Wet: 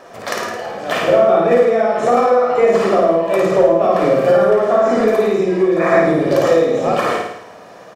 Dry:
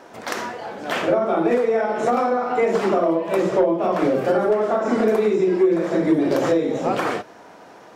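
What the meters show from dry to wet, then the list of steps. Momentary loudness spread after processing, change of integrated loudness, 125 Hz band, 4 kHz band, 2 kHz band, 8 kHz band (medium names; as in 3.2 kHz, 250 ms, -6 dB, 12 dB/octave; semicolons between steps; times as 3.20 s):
10 LU, +6.0 dB, +5.5 dB, +6.0 dB, +6.0 dB, no reading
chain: time-frequency box 5.80–6.01 s, 650–2600 Hz +11 dB; comb 1.7 ms, depth 41%; on a send: flutter echo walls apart 9.3 m, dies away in 0.78 s; on the sum: trim +3 dB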